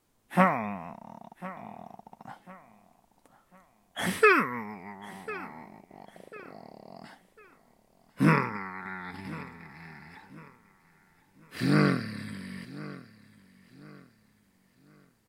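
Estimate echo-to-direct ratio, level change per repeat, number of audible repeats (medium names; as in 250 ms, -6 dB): -17.5 dB, -9.0 dB, 2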